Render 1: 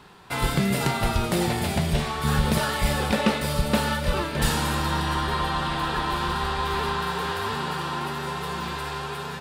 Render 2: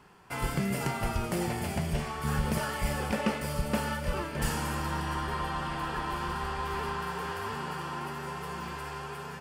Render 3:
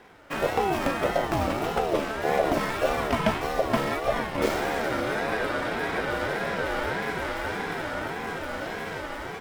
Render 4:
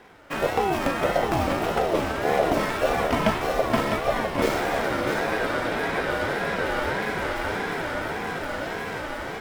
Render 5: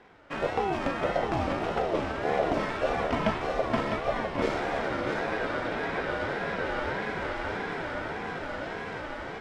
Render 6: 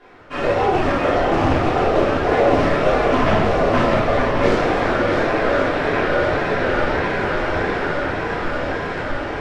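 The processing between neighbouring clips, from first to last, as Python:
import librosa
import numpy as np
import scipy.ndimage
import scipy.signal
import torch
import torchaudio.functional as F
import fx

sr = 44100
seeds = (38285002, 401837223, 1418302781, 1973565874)

y1 = fx.peak_eq(x, sr, hz=3800.0, db=-14.5, octaves=0.24)
y1 = y1 * 10.0 ** (-7.0 / 20.0)
y2 = scipy.ndimage.median_filter(y1, 5, mode='constant')
y2 = fx.ring_lfo(y2, sr, carrier_hz=520.0, swing_pct=20, hz=1.7)
y2 = y2 * 10.0 ** (8.0 / 20.0)
y3 = y2 + 10.0 ** (-7.0 / 20.0) * np.pad(y2, (int(654 * sr / 1000.0), 0))[:len(y2)]
y3 = y3 * 10.0 ** (1.5 / 20.0)
y4 = fx.air_absorb(y3, sr, metres=92.0)
y4 = y4 * 10.0 ** (-4.5 / 20.0)
y5 = y4 + 10.0 ** (-9.0 / 20.0) * np.pad(y4, (int(1075 * sr / 1000.0), 0))[:len(y4)]
y5 = fx.room_shoebox(y5, sr, seeds[0], volume_m3=190.0, walls='mixed', distance_m=3.2)
y5 = fx.doppler_dist(y5, sr, depth_ms=0.31)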